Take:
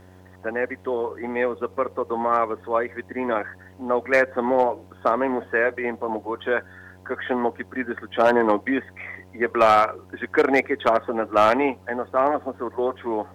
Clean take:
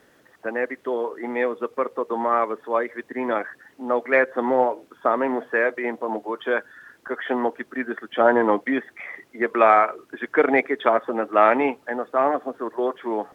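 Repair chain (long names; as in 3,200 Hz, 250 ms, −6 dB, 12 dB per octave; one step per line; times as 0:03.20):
clipped peaks rebuilt −8.5 dBFS
hum removal 92.3 Hz, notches 11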